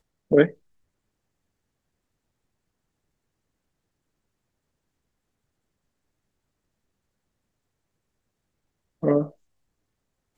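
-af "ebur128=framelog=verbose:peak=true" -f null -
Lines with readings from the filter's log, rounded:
Integrated loudness:
  I:         -22.7 LUFS
  Threshold: -33.8 LUFS
Loudness range:
  LRA:         4.5 LU
  Threshold: -51.9 LUFS
  LRA low:   -33.6 LUFS
  LRA high:  -29.1 LUFS
True peak:
  Peak:       -3.3 dBFS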